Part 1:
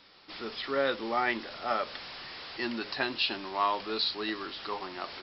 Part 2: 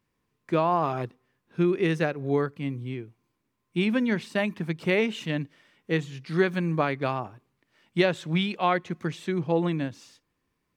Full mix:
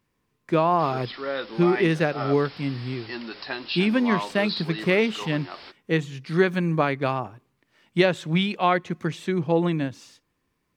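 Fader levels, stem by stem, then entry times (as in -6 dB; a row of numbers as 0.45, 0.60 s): -1.0, +3.0 dB; 0.50, 0.00 s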